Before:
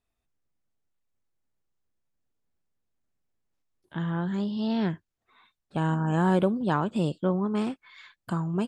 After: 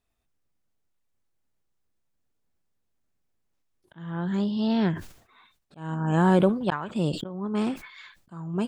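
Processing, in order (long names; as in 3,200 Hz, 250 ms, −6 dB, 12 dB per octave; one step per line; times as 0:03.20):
0:06.49–0:06.94: octave-band graphic EQ 250/1,000/2,000 Hz −5/+3/+10 dB
volume swells 430 ms
level that may fall only so fast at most 110 dB per second
level +3 dB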